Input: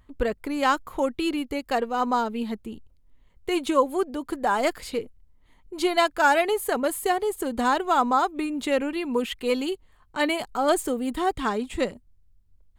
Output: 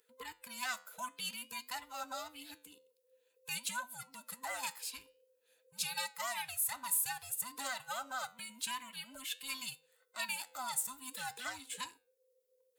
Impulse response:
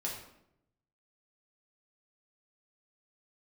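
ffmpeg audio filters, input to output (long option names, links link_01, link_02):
-af "afftfilt=real='real(if(between(b,1,1008),(2*floor((b-1)/24)+1)*24-b,b),0)':imag='imag(if(between(b,1,1008),(2*floor((b-1)/24)+1)*24-b,b),0)*if(between(b,1,1008),-1,1)':win_size=2048:overlap=0.75,acontrast=43,flanger=delay=9.5:depth=3.2:regen=-82:speed=0.51:shape=sinusoidal,alimiter=limit=-14.5dB:level=0:latency=1:release=498,aderivative"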